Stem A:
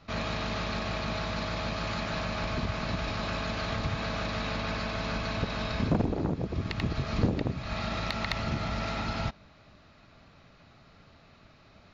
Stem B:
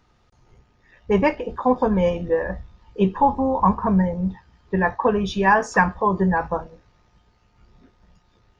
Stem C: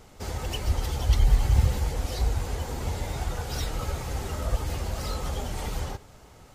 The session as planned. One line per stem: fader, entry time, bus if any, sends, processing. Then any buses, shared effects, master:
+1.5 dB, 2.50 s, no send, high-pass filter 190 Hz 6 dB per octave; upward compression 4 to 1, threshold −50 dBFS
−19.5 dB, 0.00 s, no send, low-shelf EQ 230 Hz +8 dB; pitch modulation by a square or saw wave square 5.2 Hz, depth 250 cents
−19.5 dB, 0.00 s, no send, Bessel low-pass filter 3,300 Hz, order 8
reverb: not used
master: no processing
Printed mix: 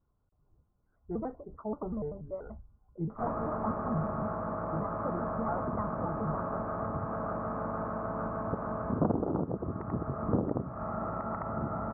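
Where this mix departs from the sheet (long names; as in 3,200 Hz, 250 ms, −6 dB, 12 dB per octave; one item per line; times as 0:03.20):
stem A: entry 2.50 s → 3.10 s
stem C: muted
master: extra elliptic low-pass filter 1,300 Hz, stop band 60 dB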